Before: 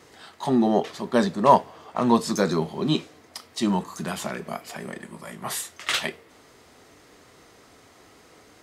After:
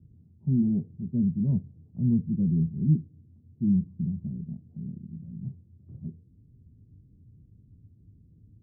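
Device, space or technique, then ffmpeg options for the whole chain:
the neighbour's flat through the wall: -af "lowpass=frequency=170:width=0.5412,lowpass=frequency=170:width=1.3066,equalizer=frequency=98:width_type=o:width=0.63:gain=4.5,volume=8dB"

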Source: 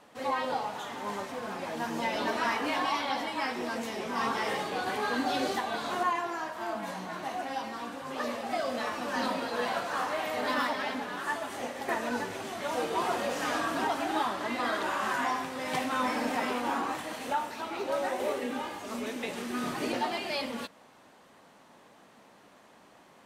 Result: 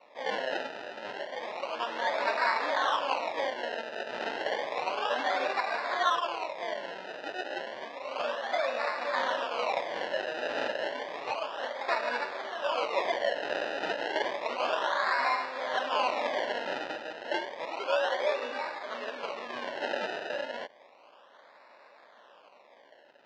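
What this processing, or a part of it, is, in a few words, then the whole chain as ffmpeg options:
circuit-bent sampling toy: -af "acrusher=samples=27:mix=1:aa=0.000001:lfo=1:lforange=27:lforate=0.31,highpass=570,equalizer=frequency=580:width_type=q:width=4:gain=8,equalizer=frequency=1000:width_type=q:width=4:gain=4,equalizer=frequency=1700:width_type=q:width=4:gain=5,equalizer=frequency=2800:width_type=q:width=4:gain=4,lowpass=frequency=4700:width=0.5412,lowpass=frequency=4700:width=1.3066"

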